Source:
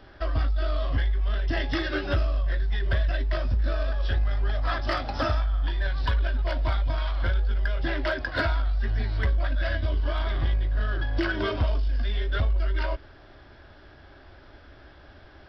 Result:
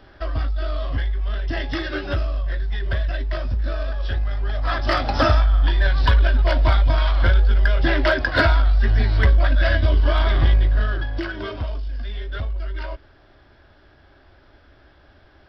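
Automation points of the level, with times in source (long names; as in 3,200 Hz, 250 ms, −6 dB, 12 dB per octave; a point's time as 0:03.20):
0:04.46 +1.5 dB
0:05.10 +9 dB
0:10.66 +9 dB
0:11.31 −2.5 dB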